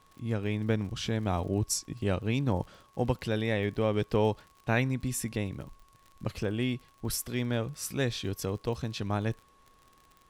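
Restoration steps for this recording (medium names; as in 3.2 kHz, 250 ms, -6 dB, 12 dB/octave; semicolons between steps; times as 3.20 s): de-click; band-stop 1.1 kHz, Q 30; expander -53 dBFS, range -21 dB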